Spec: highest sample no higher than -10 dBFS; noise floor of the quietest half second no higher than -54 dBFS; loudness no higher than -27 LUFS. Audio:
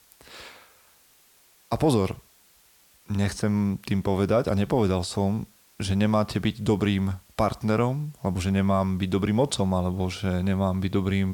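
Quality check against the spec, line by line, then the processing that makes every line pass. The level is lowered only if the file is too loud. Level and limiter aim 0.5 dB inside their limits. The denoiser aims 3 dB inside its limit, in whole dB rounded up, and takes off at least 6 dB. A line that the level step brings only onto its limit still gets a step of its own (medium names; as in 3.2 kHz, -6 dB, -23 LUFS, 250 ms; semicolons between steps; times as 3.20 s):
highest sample -11.5 dBFS: pass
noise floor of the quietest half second -59 dBFS: pass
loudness -25.5 LUFS: fail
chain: trim -2 dB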